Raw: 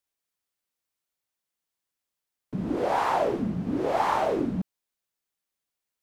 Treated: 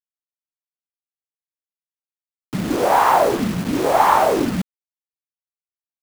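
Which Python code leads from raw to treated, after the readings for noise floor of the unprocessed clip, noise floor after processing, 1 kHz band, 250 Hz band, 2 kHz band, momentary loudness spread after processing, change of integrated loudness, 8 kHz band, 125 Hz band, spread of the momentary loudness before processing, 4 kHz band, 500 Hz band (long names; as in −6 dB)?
below −85 dBFS, below −85 dBFS, +11.0 dB, +7.0 dB, +10.5 dB, 13 LU, +9.5 dB, +17.0 dB, +6.5 dB, 10 LU, +11.5 dB, +8.5 dB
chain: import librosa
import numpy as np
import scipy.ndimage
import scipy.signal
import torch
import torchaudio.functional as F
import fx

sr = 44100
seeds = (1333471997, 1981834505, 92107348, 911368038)

y = fx.quant_dither(x, sr, seeds[0], bits=6, dither='none')
y = fx.dynamic_eq(y, sr, hz=1100.0, q=0.82, threshold_db=-36.0, ratio=4.0, max_db=5)
y = F.gain(torch.from_numpy(y), 6.5).numpy()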